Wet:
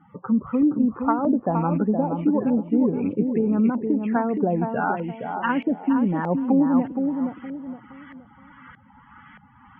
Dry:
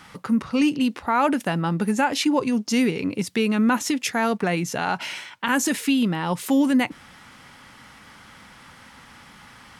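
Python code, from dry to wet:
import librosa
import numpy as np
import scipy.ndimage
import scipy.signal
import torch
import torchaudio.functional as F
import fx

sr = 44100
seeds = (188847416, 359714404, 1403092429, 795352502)

y = fx.rattle_buzz(x, sr, strikes_db=-25.0, level_db=-18.0)
y = fx.env_lowpass_down(y, sr, base_hz=480.0, full_db=-17.5)
y = fx.high_shelf_res(y, sr, hz=4200.0, db=-10.5, q=3.0)
y = fx.spec_topn(y, sr, count=32)
y = fx.echo_feedback(y, sr, ms=468, feedback_pct=32, wet_db=-6)
y = fx.filter_lfo_lowpass(y, sr, shape='saw_up', hz=1.6, low_hz=550.0, high_hz=1800.0, q=1.5)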